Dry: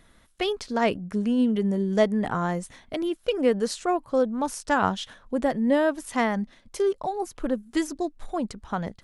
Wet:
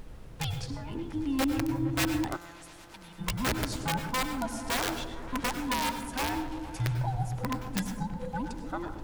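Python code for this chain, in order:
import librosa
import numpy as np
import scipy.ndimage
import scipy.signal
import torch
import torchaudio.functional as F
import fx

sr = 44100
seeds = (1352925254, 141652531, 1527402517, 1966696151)

y = fx.band_invert(x, sr, width_hz=500)
y = fx.over_compress(y, sr, threshold_db=-33.0, ratio=-1.0, at=(0.63, 1.03))
y = fx.low_shelf(y, sr, hz=370.0, db=-7.5, at=(5.52, 6.19))
y = fx.dmg_noise_colour(y, sr, seeds[0], colour='brown', level_db=-37.0)
y = (np.mod(10.0 ** (15.5 / 20.0) * y + 1.0, 2.0) - 1.0) / 10.0 ** (15.5 / 20.0)
y = fx.echo_opening(y, sr, ms=115, hz=200, octaves=1, feedback_pct=70, wet_db=-6)
y = fx.rev_plate(y, sr, seeds[1], rt60_s=0.55, hf_ratio=0.55, predelay_ms=85, drr_db=8.0)
y = fx.spectral_comp(y, sr, ratio=2.0, at=(2.35, 3.18), fade=0.02)
y = y * librosa.db_to_amplitude(-7.0)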